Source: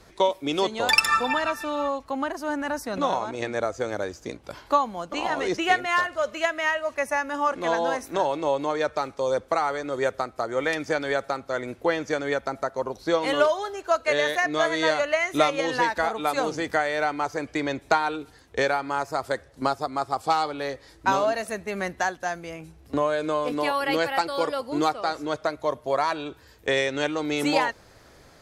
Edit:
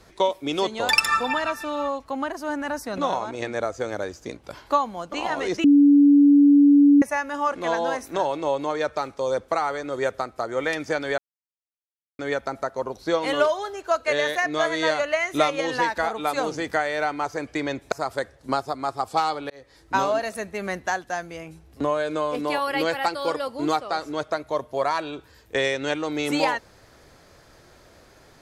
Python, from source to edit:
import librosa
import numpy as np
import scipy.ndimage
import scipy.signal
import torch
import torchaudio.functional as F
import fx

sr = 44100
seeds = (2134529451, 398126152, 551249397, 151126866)

y = fx.edit(x, sr, fx.bleep(start_s=5.64, length_s=1.38, hz=286.0, db=-10.5),
    fx.silence(start_s=11.18, length_s=1.01),
    fx.cut(start_s=17.92, length_s=1.13),
    fx.fade_in_span(start_s=20.63, length_s=0.54, curve='qsin'), tone=tone)